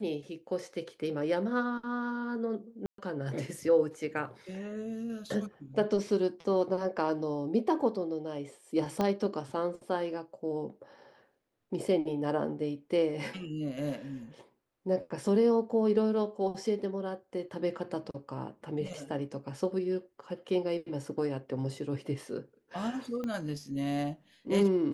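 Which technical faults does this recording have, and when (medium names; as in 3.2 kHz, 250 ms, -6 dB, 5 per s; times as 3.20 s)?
2.86–2.98 s: dropout 123 ms
9.01 s: pop -17 dBFS
23.24 s: pop -25 dBFS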